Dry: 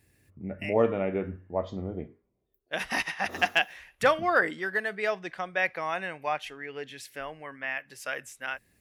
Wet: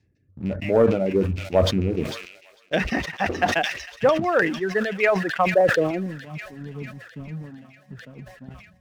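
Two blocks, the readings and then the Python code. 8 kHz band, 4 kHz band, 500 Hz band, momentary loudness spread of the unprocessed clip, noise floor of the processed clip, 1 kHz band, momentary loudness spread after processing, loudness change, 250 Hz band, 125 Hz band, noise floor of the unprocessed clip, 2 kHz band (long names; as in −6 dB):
+4.5 dB, +4.0 dB, +8.5 dB, 14 LU, −58 dBFS, +4.0 dB, 18 LU, +7.5 dB, +10.5 dB, +13.0 dB, −74 dBFS, +2.0 dB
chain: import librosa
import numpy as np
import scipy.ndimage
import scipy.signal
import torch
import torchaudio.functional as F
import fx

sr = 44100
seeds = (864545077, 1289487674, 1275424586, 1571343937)

p1 = fx.rattle_buzz(x, sr, strikes_db=-38.0, level_db=-32.0)
p2 = fx.dereverb_blind(p1, sr, rt60_s=0.93)
p3 = fx.rotary_switch(p2, sr, hz=1.1, then_hz=5.0, switch_at_s=6.3)
p4 = fx.filter_lfo_lowpass(p3, sr, shape='saw_down', hz=6.6, low_hz=890.0, high_hz=5600.0, q=0.88)
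p5 = fx.rider(p4, sr, range_db=3, speed_s=0.5)
p6 = fx.filter_sweep_lowpass(p5, sr, from_hz=6100.0, to_hz=190.0, start_s=4.65, end_s=6.19, q=3.5)
p7 = fx.dynamic_eq(p6, sr, hz=530.0, q=0.9, threshold_db=-41.0, ratio=4.0, max_db=4)
p8 = scipy.signal.sosfilt(scipy.signal.butter(2, 60.0, 'highpass', fs=sr, output='sos'), p7)
p9 = fx.low_shelf(p8, sr, hz=410.0, db=11.0)
p10 = fx.leveller(p9, sr, passes=1)
p11 = p10 + fx.echo_wet_highpass(p10, sr, ms=450, feedback_pct=68, hz=3100.0, wet_db=-7, dry=0)
y = fx.sustainer(p11, sr, db_per_s=74.0)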